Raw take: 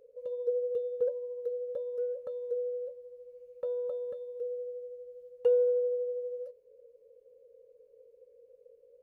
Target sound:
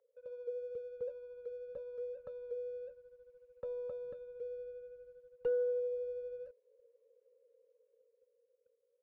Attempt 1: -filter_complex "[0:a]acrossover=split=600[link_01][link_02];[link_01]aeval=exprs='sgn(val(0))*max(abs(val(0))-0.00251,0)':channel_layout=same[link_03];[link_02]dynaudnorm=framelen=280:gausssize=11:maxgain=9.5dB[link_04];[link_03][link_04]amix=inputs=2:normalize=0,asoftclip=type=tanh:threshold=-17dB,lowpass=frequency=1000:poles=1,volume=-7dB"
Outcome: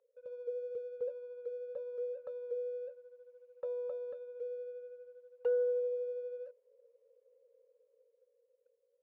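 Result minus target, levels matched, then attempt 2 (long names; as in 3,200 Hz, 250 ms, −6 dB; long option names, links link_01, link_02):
250 Hz band −7.0 dB
-filter_complex "[0:a]acrossover=split=600[link_01][link_02];[link_01]aeval=exprs='sgn(val(0))*max(abs(val(0))-0.00251,0)':channel_layout=same[link_03];[link_02]dynaudnorm=framelen=280:gausssize=11:maxgain=9.5dB[link_04];[link_03][link_04]amix=inputs=2:normalize=0,asoftclip=type=tanh:threshold=-17dB,lowpass=frequency=1000:poles=1,asubboost=boost=11:cutoff=190,volume=-7dB"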